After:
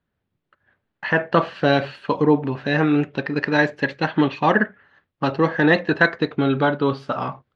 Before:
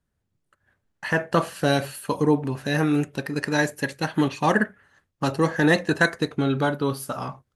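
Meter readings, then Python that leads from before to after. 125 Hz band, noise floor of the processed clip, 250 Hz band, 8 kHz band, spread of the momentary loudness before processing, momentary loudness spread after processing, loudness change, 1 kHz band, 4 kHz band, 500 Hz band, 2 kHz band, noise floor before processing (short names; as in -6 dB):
+1.0 dB, -79 dBFS, +3.0 dB, under -15 dB, 9 LU, 8 LU, +3.5 dB, +4.0 dB, +1.5 dB, +4.0 dB, +4.0 dB, -77 dBFS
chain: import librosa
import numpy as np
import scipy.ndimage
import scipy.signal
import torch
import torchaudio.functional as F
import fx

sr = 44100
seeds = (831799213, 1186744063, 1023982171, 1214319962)

p1 = scipy.signal.sosfilt(scipy.signal.butter(4, 3800.0, 'lowpass', fs=sr, output='sos'), x)
p2 = fx.low_shelf(p1, sr, hz=91.0, db=-11.5)
p3 = fx.rider(p2, sr, range_db=3, speed_s=0.5)
p4 = p2 + F.gain(torch.from_numpy(p3), -1.0).numpy()
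y = F.gain(torch.from_numpy(p4), -1.0).numpy()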